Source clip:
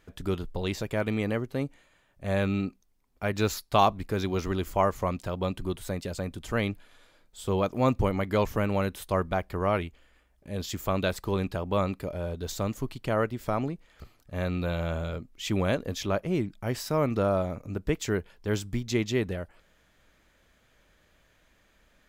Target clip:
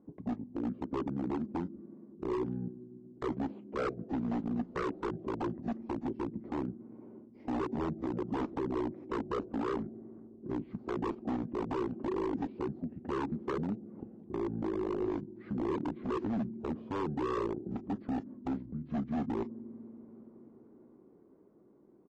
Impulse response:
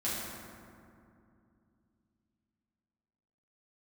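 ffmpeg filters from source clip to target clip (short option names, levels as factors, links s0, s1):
-filter_complex "[0:a]lowshelf=f=290:g=9,dynaudnorm=f=350:g=13:m=6.31,alimiter=limit=0.299:level=0:latency=1:release=27,acompressor=threshold=0.0178:ratio=3,asetrate=27781,aresample=44100,atempo=1.5874,asuperpass=centerf=330:order=4:qfactor=1.2,asplit=2[s0][s1];[1:a]atrim=start_sample=2205,lowpass=5600,highshelf=f=3800:g=-12[s2];[s1][s2]afir=irnorm=-1:irlink=0,volume=0.0668[s3];[s0][s3]amix=inputs=2:normalize=0,aeval=exprs='0.0158*(abs(mod(val(0)/0.0158+3,4)-2)-1)':c=same,volume=2.66" -ar 24000 -c:a aac -b:a 24k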